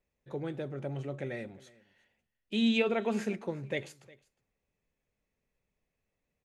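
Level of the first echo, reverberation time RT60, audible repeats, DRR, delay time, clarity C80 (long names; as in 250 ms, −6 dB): −22.5 dB, no reverb audible, 1, no reverb audible, 359 ms, no reverb audible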